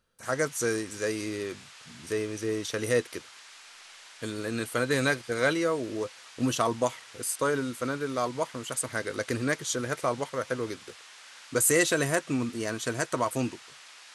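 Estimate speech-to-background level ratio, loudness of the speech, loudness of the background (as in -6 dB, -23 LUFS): 18.0 dB, -29.5 LUFS, -47.5 LUFS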